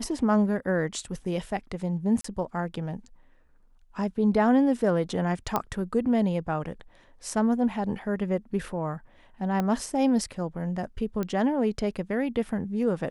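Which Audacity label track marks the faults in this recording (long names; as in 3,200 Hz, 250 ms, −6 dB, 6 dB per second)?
2.210000	2.240000	drop-out 34 ms
5.560000	5.560000	click −11 dBFS
9.600000	9.600000	click −15 dBFS
11.230000	11.230000	click −18 dBFS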